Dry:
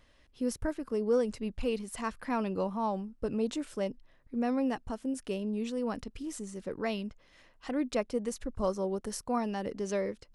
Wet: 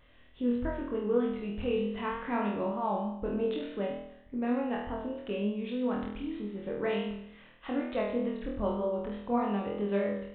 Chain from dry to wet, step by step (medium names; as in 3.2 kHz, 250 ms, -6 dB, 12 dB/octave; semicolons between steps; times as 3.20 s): in parallel at -2 dB: compression, threshold -40 dBFS, peak gain reduction 16 dB; on the sum: flutter echo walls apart 4.2 m, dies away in 0.76 s; vibrato 3.3 Hz 39 cents; resampled via 8 kHz; trim -4.5 dB